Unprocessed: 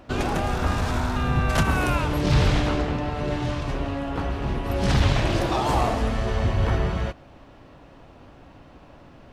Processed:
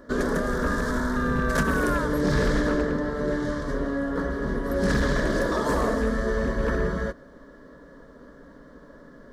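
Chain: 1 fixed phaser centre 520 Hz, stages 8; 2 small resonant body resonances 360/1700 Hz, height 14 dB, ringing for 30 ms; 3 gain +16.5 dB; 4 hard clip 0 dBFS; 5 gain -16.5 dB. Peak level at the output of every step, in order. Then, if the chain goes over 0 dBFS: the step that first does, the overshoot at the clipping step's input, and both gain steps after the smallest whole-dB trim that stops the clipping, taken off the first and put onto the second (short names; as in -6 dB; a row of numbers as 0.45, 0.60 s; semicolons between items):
-11.5, -9.0, +7.5, 0.0, -16.5 dBFS; step 3, 7.5 dB; step 3 +8.5 dB, step 5 -8.5 dB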